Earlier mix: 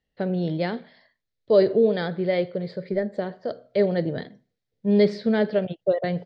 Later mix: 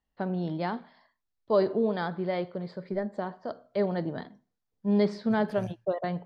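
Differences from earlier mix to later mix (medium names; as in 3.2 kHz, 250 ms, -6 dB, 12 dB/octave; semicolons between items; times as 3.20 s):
second voice: entry -1.30 s; master: add graphic EQ 125/500/1000/2000/4000 Hz -9/-11/+10/-8/-7 dB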